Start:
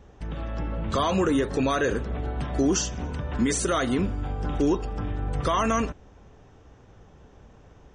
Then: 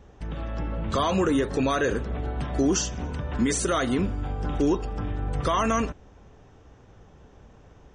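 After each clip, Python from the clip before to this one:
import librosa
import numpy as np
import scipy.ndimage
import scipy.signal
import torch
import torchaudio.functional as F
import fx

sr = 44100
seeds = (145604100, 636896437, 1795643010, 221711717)

y = x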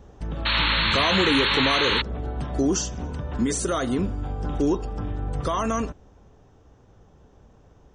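y = fx.peak_eq(x, sr, hz=2200.0, db=-5.5, octaves=1.2)
y = fx.rider(y, sr, range_db=4, speed_s=2.0)
y = fx.spec_paint(y, sr, seeds[0], shape='noise', start_s=0.45, length_s=1.57, low_hz=830.0, high_hz=4400.0, level_db=-23.0)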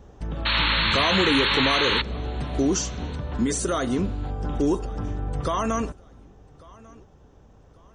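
y = fx.echo_feedback(x, sr, ms=1145, feedback_pct=33, wet_db=-24)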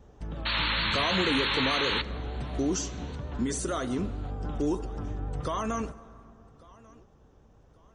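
y = fx.vibrato(x, sr, rate_hz=6.5, depth_cents=49.0)
y = fx.rev_plate(y, sr, seeds[1], rt60_s=2.7, hf_ratio=0.4, predelay_ms=0, drr_db=15.5)
y = F.gain(torch.from_numpy(y), -6.0).numpy()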